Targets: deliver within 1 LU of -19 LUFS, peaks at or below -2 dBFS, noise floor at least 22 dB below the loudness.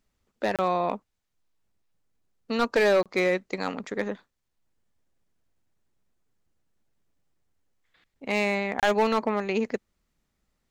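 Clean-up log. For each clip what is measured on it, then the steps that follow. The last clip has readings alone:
clipped 0.5%; flat tops at -15.5 dBFS; dropouts 3; longest dropout 27 ms; loudness -26.5 LUFS; peak -15.5 dBFS; loudness target -19.0 LUFS
-> clip repair -15.5 dBFS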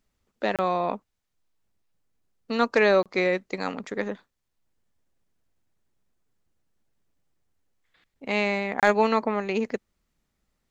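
clipped 0.0%; dropouts 3; longest dropout 27 ms
-> interpolate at 0.56/3.03/8.8, 27 ms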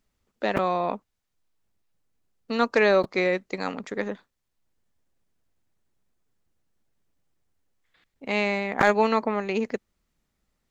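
dropouts 0; loudness -25.0 LUFS; peak -4.0 dBFS; loudness target -19.0 LUFS
-> gain +6 dB; limiter -2 dBFS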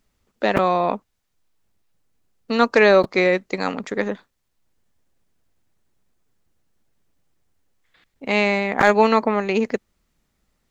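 loudness -19.5 LUFS; peak -2.0 dBFS; noise floor -72 dBFS

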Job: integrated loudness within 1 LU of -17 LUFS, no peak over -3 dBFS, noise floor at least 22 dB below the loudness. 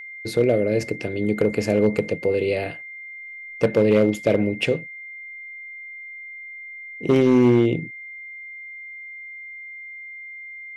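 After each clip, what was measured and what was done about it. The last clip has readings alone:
clipped 1.2%; flat tops at -10.0 dBFS; steady tone 2100 Hz; tone level -35 dBFS; loudness -21.0 LUFS; peak -10.0 dBFS; loudness target -17.0 LUFS
-> clip repair -10 dBFS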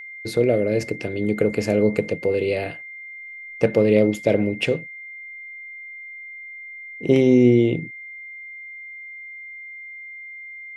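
clipped 0.0%; steady tone 2100 Hz; tone level -35 dBFS
-> notch 2100 Hz, Q 30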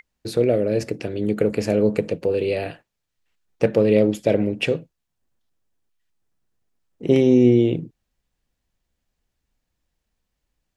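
steady tone none; loudness -20.5 LUFS; peak -5.0 dBFS; loudness target -17.0 LUFS
-> gain +3.5 dB; limiter -3 dBFS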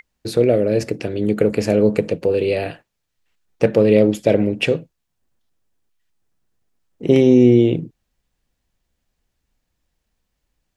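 loudness -17.0 LUFS; peak -3.0 dBFS; noise floor -76 dBFS

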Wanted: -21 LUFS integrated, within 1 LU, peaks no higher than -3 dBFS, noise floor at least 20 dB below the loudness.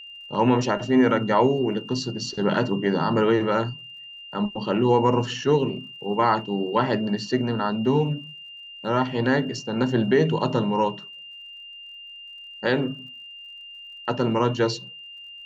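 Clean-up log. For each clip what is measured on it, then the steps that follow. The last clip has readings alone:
ticks 46/s; steady tone 2800 Hz; tone level -39 dBFS; loudness -23.5 LUFS; peak -7.0 dBFS; loudness target -21.0 LUFS
-> de-click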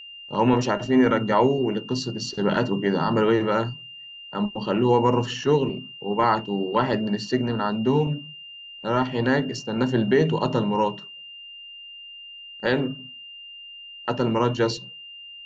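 ticks 0.39/s; steady tone 2800 Hz; tone level -39 dBFS
-> notch 2800 Hz, Q 30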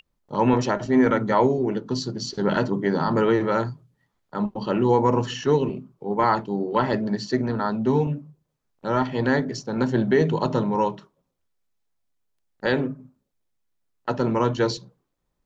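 steady tone none; loudness -23.5 LUFS; peak -7.0 dBFS; loudness target -21.0 LUFS
-> gain +2.5 dB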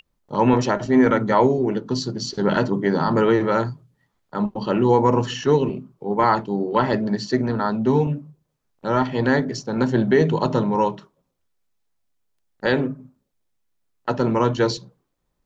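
loudness -21.0 LUFS; peak -4.5 dBFS; noise floor -74 dBFS

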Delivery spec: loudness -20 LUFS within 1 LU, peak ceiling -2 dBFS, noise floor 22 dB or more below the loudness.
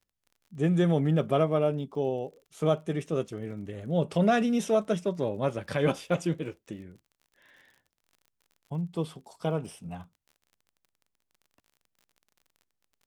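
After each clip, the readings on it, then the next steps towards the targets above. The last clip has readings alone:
ticks 39/s; loudness -29.0 LUFS; peak -12.0 dBFS; loudness target -20.0 LUFS
-> de-click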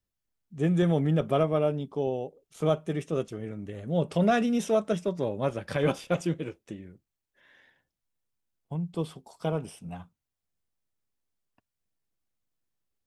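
ticks 0/s; loudness -29.0 LUFS; peak -12.0 dBFS; loudness target -20.0 LUFS
-> gain +9 dB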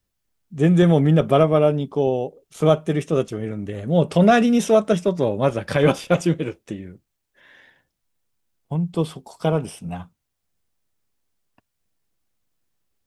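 loudness -20.0 LUFS; peak -3.0 dBFS; noise floor -77 dBFS

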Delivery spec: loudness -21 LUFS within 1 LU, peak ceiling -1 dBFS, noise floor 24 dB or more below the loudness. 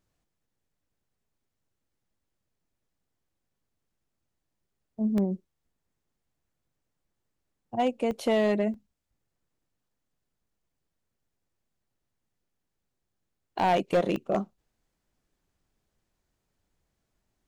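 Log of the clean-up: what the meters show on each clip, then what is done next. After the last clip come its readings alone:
clipped 0.3%; flat tops at -18.0 dBFS; dropouts 5; longest dropout 1.7 ms; loudness -28.0 LUFS; peak -18.0 dBFS; loudness target -21.0 LUFS
-> clip repair -18 dBFS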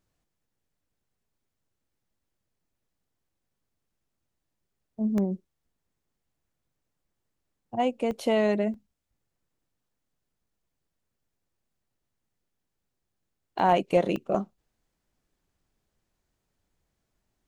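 clipped 0.0%; dropouts 5; longest dropout 1.7 ms
-> interpolate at 5.18/8.11/8.74/13.59/14.16, 1.7 ms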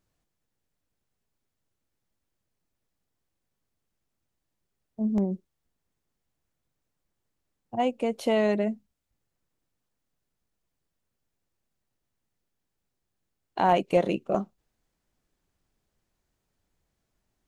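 dropouts 0; loudness -27.0 LUFS; peak -10.0 dBFS; loudness target -21.0 LUFS
-> gain +6 dB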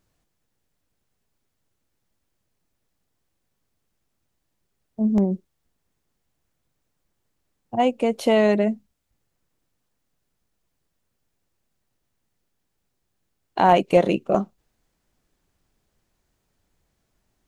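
loudness -21.0 LUFS; peak -4.0 dBFS; noise floor -76 dBFS

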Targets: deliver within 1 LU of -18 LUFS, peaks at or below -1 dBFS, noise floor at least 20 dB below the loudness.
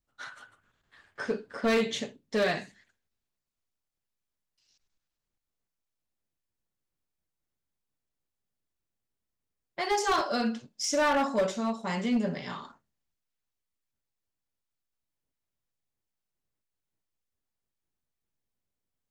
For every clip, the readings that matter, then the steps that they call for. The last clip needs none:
clipped 0.6%; flat tops at -21.0 dBFS; loudness -29.5 LUFS; peak -21.0 dBFS; loudness target -18.0 LUFS
-> clip repair -21 dBFS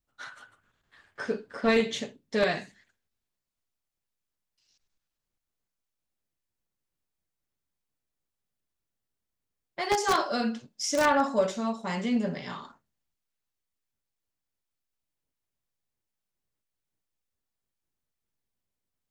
clipped 0.0%; loudness -28.0 LUFS; peak -12.0 dBFS; loudness target -18.0 LUFS
-> gain +10 dB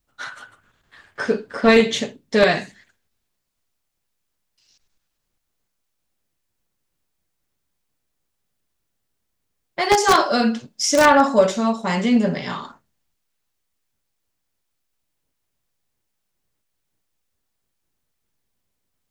loudness -18.0 LUFS; peak -2.0 dBFS; noise floor -76 dBFS

